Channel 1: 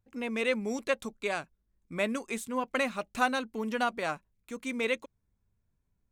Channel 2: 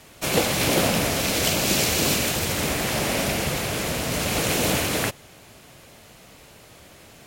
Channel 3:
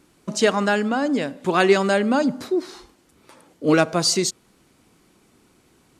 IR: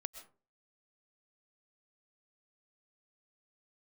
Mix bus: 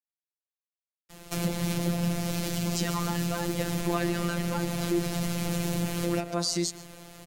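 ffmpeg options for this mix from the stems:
-filter_complex "[1:a]acrossover=split=230[link_01][link_02];[link_02]acompressor=threshold=-31dB:ratio=5[link_03];[link_01][link_03]amix=inputs=2:normalize=0,lowshelf=frequency=180:gain=7.5,adelay=1100,volume=0.5dB,asplit=2[link_04][link_05];[link_05]volume=-6dB[link_06];[2:a]acompressor=threshold=-19dB:ratio=6,adelay=2400,volume=1dB,asplit=2[link_07][link_08];[link_08]volume=-9.5dB[link_09];[link_04][link_07]amix=inputs=2:normalize=0,equalizer=frequency=2500:width_type=o:width=0.77:gain=-4.5,alimiter=limit=-21dB:level=0:latency=1:release=63,volume=0dB[link_10];[3:a]atrim=start_sample=2205[link_11];[link_06][link_09]amix=inputs=2:normalize=0[link_12];[link_12][link_11]afir=irnorm=-1:irlink=0[link_13];[link_10][link_13]amix=inputs=2:normalize=0,afftfilt=real='hypot(re,im)*cos(PI*b)':imag='0':win_size=1024:overlap=0.75"

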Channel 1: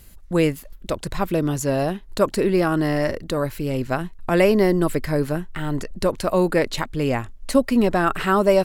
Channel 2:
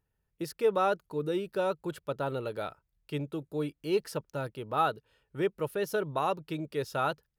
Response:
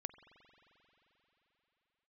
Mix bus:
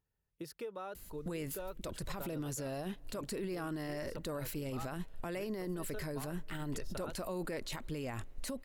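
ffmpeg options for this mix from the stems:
-filter_complex "[0:a]agate=range=-8dB:threshold=-30dB:ratio=16:detection=peak,highshelf=frequency=3900:gain=7.5,acompressor=threshold=-26dB:ratio=12,adelay=950,volume=-0.5dB,asplit=2[link_01][link_02];[link_02]volume=-21dB[link_03];[1:a]acompressor=threshold=-34dB:ratio=10,volume=-6dB[link_04];[2:a]atrim=start_sample=2205[link_05];[link_03][link_05]afir=irnorm=-1:irlink=0[link_06];[link_01][link_04][link_06]amix=inputs=3:normalize=0,alimiter=level_in=7.5dB:limit=-24dB:level=0:latency=1:release=30,volume=-7.5dB"

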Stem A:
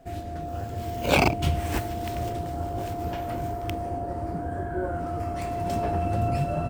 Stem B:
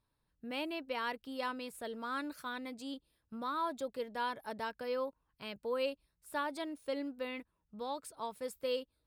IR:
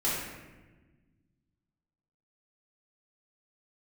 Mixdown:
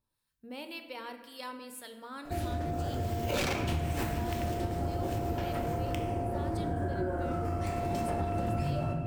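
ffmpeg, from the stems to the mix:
-filter_complex "[0:a]aeval=exprs='0.126*(abs(mod(val(0)/0.126+3,4)-2)-1)':channel_layout=same,adelay=2250,volume=0.5dB,asplit=2[link_01][link_02];[link_02]volume=-8.5dB[link_03];[1:a]highshelf=frequency=3400:gain=11,acrossover=split=940[link_04][link_05];[link_04]aeval=exprs='val(0)*(1-0.7/2+0.7/2*cos(2*PI*1.9*n/s))':channel_layout=same[link_06];[link_05]aeval=exprs='val(0)*(1-0.7/2-0.7/2*cos(2*PI*1.9*n/s))':channel_layout=same[link_07];[link_06][link_07]amix=inputs=2:normalize=0,volume=-4dB,asplit=2[link_08][link_09];[link_09]volume=-13.5dB[link_10];[2:a]atrim=start_sample=2205[link_11];[link_03][link_10]amix=inputs=2:normalize=0[link_12];[link_12][link_11]afir=irnorm=-1:irlink=0[link_13];[link_01][link_08][link_13]amix=inputs=3:normalize=0,acompressor=threshold=-30dB:ratio=4"

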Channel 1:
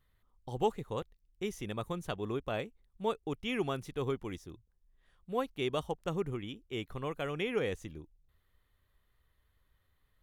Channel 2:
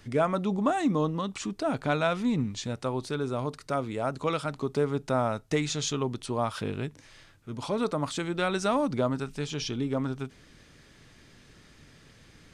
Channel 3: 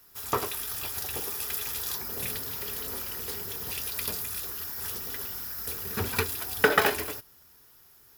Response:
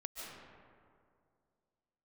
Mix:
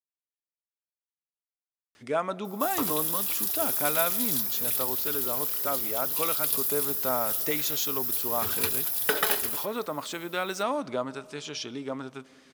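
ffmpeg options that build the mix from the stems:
-filter_complex "[1:a]highpass=frequency=350:poles=1,adelay=1950,volume=-1dB,asplit=2[link_01][link_02];[link_02]volume=-18.5dB[link_03];[2:a]aexciter=amount=2.3:drive=5.2:freq=3100,adelay=2450,volume=-6.5dB,asplit=2[link_04][link_05];[link_05]volume=-14.5dB[link_06];[3:a]atrim=start_sample=2205[link_07];[link_03][link_06]amix=inputs=2:normalize=0[link_08];[link_08][link_07]afir=irnorm=-1:irlink=0[link_09];[link_01][link_04][link_09]amix=inputs=3:normalize=0,lowshelf=frequency=170:gain=-6.5"

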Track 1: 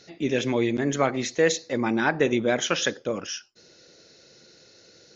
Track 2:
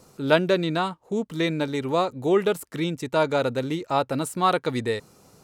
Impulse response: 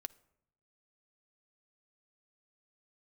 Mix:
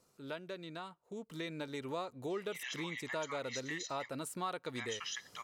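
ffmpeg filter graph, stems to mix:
-filter_complex "[0:a]highpass=frequency=1100:width=0.5412,highpass=frequency=1100:width=1.3066,aecho=1:1:1:0.92,acompressor=threshold=-29dB:ratio=6,adelay=2300,volume=-1.5dB,asplit=3[link_01][link_02][link_03];[link_01]atrim=end=4.09,asetpts=PTS-STARTPTS,afade=type=out:start_time=4.086:duration=0.004:curve=hsin[link_04];[link_02]atrim=start=4.09:end=4.75,asetpts=PTS-STARTPTS,volume=0[link_05];[link_03]atrim=start=4.75,asetpts=PTS-STARTPTS,afade=type=in:duration=0.004:curve=hsin[link_06];[link_04][link_05][link_06]concat=n=3:v=0:a=1[link_07];[1:a]bandreject=frequency=810:width=12,volume=-4dB,afade=type=in:start_time=1.03:duration=0.8:silence=0.237137,asplit=2[link_08][link_09];[link_09]volume=-15.5dB[link_10];[2:a]atrim=start_sample=2205[link_11];[link_10][link_11]afir=irnorm=-1:irlink=0[link_12];[link_07][link_08][link_12]amix=inputs=3:normalize=0,lowshelf=frequency=460:gain=-6,acompressor=threshold=-42dB:ratio=2.5"

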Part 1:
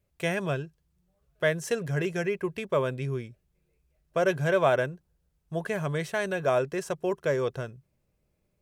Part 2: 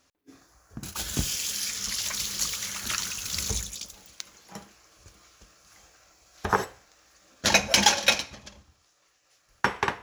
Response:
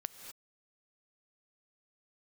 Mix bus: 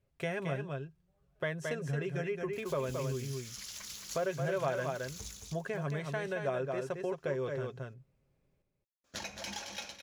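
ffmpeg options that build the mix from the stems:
-filter_complex "[0:a]highshelf=frequency=5800:gain=-11.5,aecho=1:1:7.4:0.39,volume=-1.5dB,asplit=2[link_01][link_02];[link_02]volume=-6dB[link_03];[1:a]alimiter=limit=-12.5dB:level=0:latency=1:release=141,adelay=1700,volume=-15dB,asplit=3[link_04][link_05][link_06];[link_04]atrim=end=7.72,asetpts=PTS-STARTPTS,afade=type=out:start_time=7.716:duration=0.004:curve=hsin[link_07];[link_05]atrim=start=7.72:end=9.04,asetpts=PTS-STARTPTS,volume=0[link_08];[link_06]atrim=start=9.04,asetpts=PTS-STARTPTS,afade=type=in:duration=0.004:curve=hsin[link_09];[link_07][link_08][link_09]concat=n=3:v=0:a=1,asplit=2[link_10][link_11];[link_11]volume=-7dB[link_12];[link_03][link_12]amix=inputs=2:normalize=0,aecho=0:1:220:1[link_13];[link_01][link_10][link_13]amix=inputs=3:normalize=0,acompressor=threshold=-37dB:ratio=2"

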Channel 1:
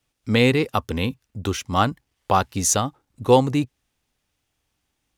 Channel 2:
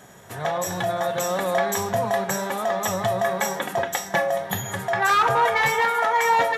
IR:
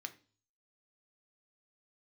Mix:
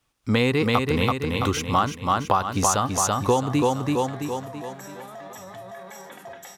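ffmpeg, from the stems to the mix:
-filter_complex "[0:a]equalizer=frequency=1100:width=2.1:gain=7,volume=1.5dB,asplit=2[link_01][link_02];[link_02]volume=-4.5dB[link_03];[1:a]alimiter=limit=-19.5dB:level=0:latency=1:release=28,adelay=2500,volume=-13.5dB,asplit=2[link_04][link_05];[link_05]volume=-8.5dB[link_06];[2:a]atrim=start_sample=2205[link_07];[link_06][link_07]afir=irnorm=-1:irlink=0[link_08];[link_03]aecho=0:1:332|664|996|1328|1660|1992:1|0.46|0.212|0.0973|0.0448|0.0206[link_09];[link_01][link_04][link_08][link_09]amix=inputs=4:normalize=0,acompressor=threshold=-17dB:ratio=6"

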